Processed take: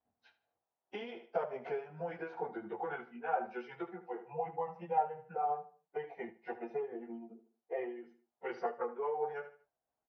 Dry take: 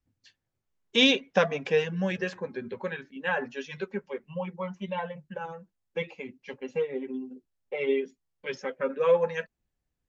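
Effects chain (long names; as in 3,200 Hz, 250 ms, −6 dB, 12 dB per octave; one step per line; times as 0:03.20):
phase-vocoder pitch shift without resampling −2 semitones
downward compressor 10 to 1, threshold −36 dBFS, peak gain reduction 18.5 dB
resonant band-pass 750 Hz, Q 3.5
repeating echo 76 ms, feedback 34%, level −14 dB
amplitude modulation by smooth noise, depth 60%
level +17 dB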